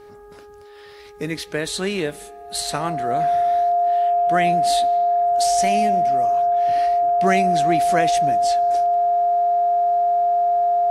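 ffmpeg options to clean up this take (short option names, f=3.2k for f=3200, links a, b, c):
-af "bandreject=f=413.2:t=h:w=4,bandreject=f=826.4:t=h:w=4,bandreject=f=1.2396k:t=h:w=4,bandreject=f=1.6528k:t=h:w=4,bandreject=f=700:w=30"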